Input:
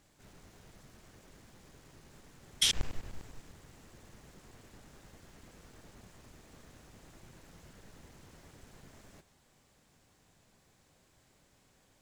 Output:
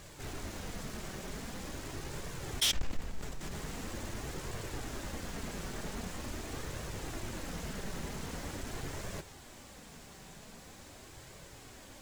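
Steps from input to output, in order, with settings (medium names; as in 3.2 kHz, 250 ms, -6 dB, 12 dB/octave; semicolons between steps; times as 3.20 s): flange 0.44 Hz, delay 1.7 ms, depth 3.7 ms, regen -42%; in parallel at +2 dB: compressor with a negative ratio -56 dBFS, ratio -0.5; on the sum: saturation -32 dBFS, distortion -10 dB; trim +8 dB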